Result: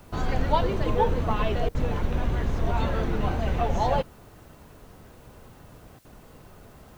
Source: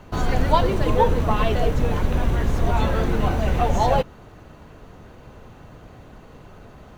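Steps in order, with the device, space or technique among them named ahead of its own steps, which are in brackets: worn cassette (LPF 6200 Hz 12 dB/oct; wow and flutter; level dips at 1.69/5.99, 56 ms -21 dB; white noise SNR 36 dB); gain -5 dB

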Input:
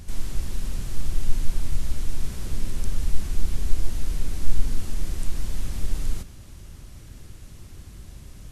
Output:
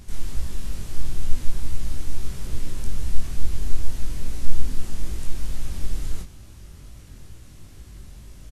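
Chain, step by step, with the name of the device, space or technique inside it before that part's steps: double-tracked vocal (doubler 16 ms -12 dB; chorus 2.3 Hz, delay 18 ms, depth 6 ms); gain +2 dB

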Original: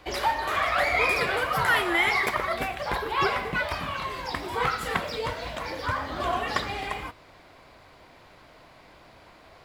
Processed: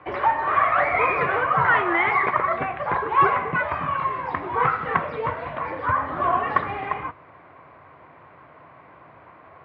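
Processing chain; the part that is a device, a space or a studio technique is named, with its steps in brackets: bass cabinet (speaker cabinet 81–2200 Hz, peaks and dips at 150 Hz +4 dB, 210 Hz -4 dB, 1100 Hz +7 dB); gain +3 dB

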